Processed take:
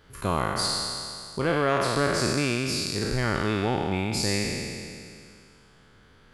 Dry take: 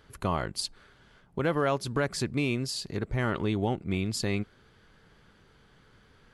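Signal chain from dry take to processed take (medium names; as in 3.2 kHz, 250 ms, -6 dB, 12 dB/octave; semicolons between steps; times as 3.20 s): spectral sustain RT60 2.32 s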